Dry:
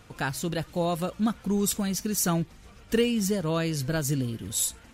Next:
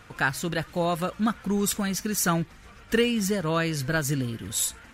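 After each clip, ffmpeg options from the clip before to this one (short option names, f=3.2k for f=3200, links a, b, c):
-af "equalizer=f=1.6k:t=o:w=1.4:g=8"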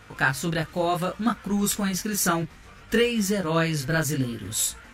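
-af "flanger=delay=18.5:depth=7.9:speed=0.65,volume=4.5dB"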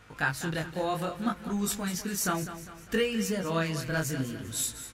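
-af "aecho=1:1:201|402|603|804|1005:0.251|0.118|0.0555|0.0261|0.0123,volume=-6dB"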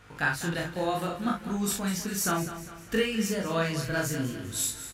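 -filter_complex "[0:a]asplit=2[a][b];[b]adelay=41,volume=-3.5dB[c];[a][c]amix=inputs=2:normalize=0"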